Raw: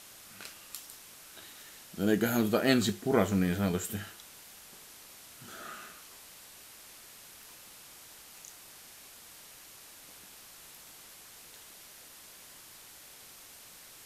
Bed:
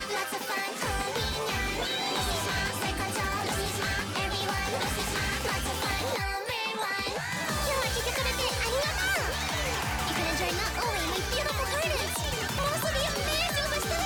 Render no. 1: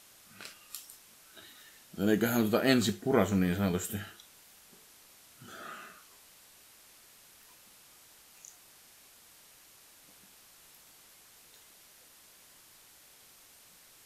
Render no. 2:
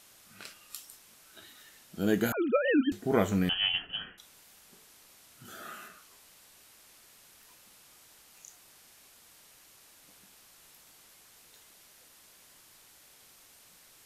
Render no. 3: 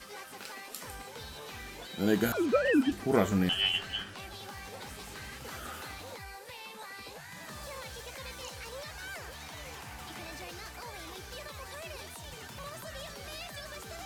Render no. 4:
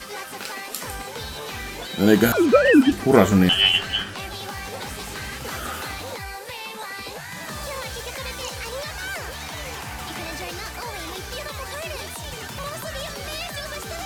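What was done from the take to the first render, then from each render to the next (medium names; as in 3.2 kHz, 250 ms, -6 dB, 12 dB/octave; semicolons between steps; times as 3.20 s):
noise print and reduce 6 dB
2.32–2.92 s: formants replaced by sine waves; 3.49–4.18 s: frequency inversion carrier 3.2 kHz; 5.45–5.88 s: treble shelf 10 kHz +9 dB
add bed -14.5 dB
trim +11.5 dB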